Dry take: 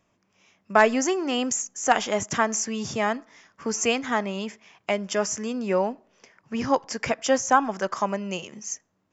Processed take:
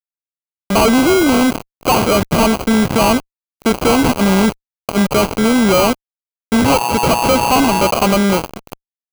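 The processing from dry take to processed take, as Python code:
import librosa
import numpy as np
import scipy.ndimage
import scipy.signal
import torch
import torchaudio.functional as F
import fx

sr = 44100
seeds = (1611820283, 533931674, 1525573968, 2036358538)

y = scipy.signal.sosfilt(scipy.signal.butter(2, 3300.0, 'lowpass', fs=sr, output='sos'), x)
y = fx.over_compress(y, sr, threshold_db=-30.0, ratio=-0.5, at=(3.97, 5.02), fade=0.02)
y = fx.dmg_tone(y, sr, hz=960.0, level_db=-33.0, at=(6.64, 7.9), fade=0.02)
y = fx.sample_hold(y, sr, seeds[0], rate_hz=1800.0, jitter_pct=0)
y = fx.fuzz(y, sr, gain_db=36.0, gate_db=-38.0)
y = y * librosa.db_to_amplitude(3.5)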